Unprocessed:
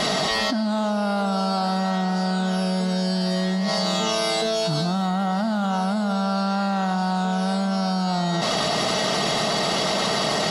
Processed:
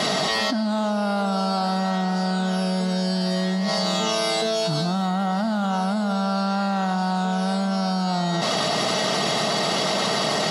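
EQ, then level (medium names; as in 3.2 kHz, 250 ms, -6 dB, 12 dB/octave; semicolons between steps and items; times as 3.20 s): high-pass 95 Hz; 0.0 dB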